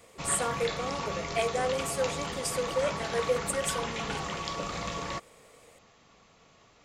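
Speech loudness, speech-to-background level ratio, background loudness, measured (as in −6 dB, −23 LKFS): −32.0 LKFS, 2.5 dB, −34.5 LKFS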